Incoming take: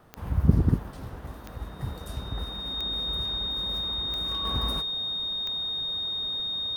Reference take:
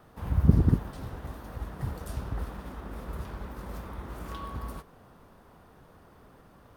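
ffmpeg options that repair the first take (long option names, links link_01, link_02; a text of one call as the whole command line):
ffmpeg -i in.wav -af "adeclick=threshold=4,bandreject=frequency=3700:width=30,asetnsamples=nb_out_samples=441:pad=0,asendcmd='4.45 volume volume -6.5dB',volume=0dB" out.wav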